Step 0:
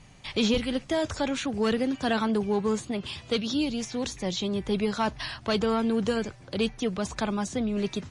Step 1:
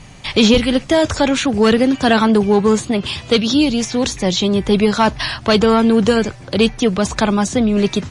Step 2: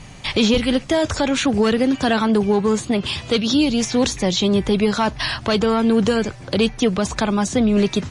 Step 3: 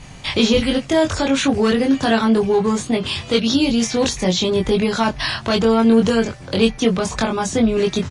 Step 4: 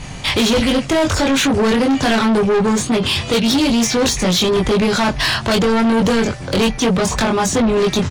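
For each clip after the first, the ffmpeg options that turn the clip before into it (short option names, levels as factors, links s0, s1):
-af "acontrast=85,volume=2"
-af "alimiter=limit=0.355:level=0:latency=1:release=298"
-filter_complex "[0:a]asplit=2[s0][s1];[s1]adelay=22,volume=0.75[s2];[s0][s2]amix=inputs=2:normalize=0,volume=0.891"
-af "asoftclip=type=tanh:threshold=0.0944,volume=2.66"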